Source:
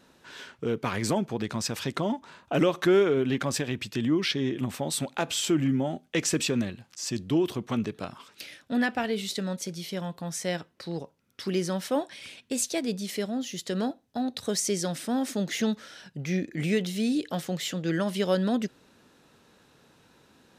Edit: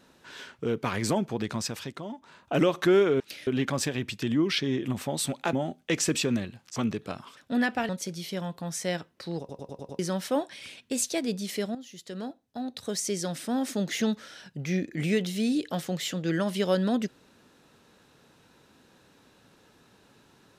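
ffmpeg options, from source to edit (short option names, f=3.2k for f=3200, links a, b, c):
-filter_complex "[0:a]asplit=16[a][b][c][d][e][f][g][h][i][j][k][l][m][n][o][p];[a]atrim=end=1.97,asetpts=PTS-STARTPTS,afade=t=out:st=1.54:d=0.43:silence=0.316228[q];[b]atrim=start=1.97:end=2.12,asetpts=PTS-STARTPTS,volume=-10dB[r];[c]atrim=start=2.12:end=3.202,asetpts=PTS-STARTPTS,afade=t=in:d=0.43:silence=0.316228[s];[d]atrim=start=8.298:end=8.572[t];[e]atrim=start=3.198:end=5.262[u];[f]atrim=start=5.778:end=7.012[v];[g]atrim=start=7.688:end=8.302[w];[h]atrim=start=8.568:end=9.092[x];[i]atrim=start=9.488:end=11.092[y];[j]atrim=start=10.988:end=11.092[z];[k]atrim=start=10.988:end=11.092[aa];[l]atrim=start=10.988:end=11.092[ab];[m]atrim=start=10.988:end=11.092[ac];[n]atrim=start=10.988:end=11.092[ad];[o]atrim=start=11.588:end=13.35,asetpts=PTS-STARTPTS,afade=t=out:st=1.758:d=0.004:c=hsin:silence=0.237137[ae];[p]atrim=start=13.35,asetpts=PTS-STARTPTS,afade=t=in:d=2.02:silence=0.237137[af];[q][r][s]concat=n=3:v=0:a=1[ag];[ag][t]acrossfade=d=0.004:c1=hsin:c2=hsin[ah];[ah][u]acrossfade=d=0.004:c1=hsin:c2=hsin[ai];[ai][v]acrossfade=d=0.004:c1=hsin:c2=hsin[aj];[aj][w]acrossfade=d=0.004:c1=hsin:c2=hsin[ak];[ak][x]acrossfade=d=0.004:c1=hsin:c2=hsin[al];[al][y]acrossfade=d=0.004:c1=hsin:c2=hsin[am];[am][z]acrossfade=d=0.004:c1=hsin:c2=hsin[an];[an][aa]acrossfade=d=0.004:c1=hsin:c2=hsin[ao];[ao][ab]acrossfade=d=0.004:c1=hsin:c2=hsin[ap];[ap][ac]acrossfade=d=0.004:c1=hsin:c2=hsin[aq];[aq][ad]acrossfade=d=0.004:c1=hsin:c2=hsin[ar];[ae][af]concat=n=2:v=0:a=1[as];[ar][as]acrossfade=d=0.004:c1=hsin:c2=hsin"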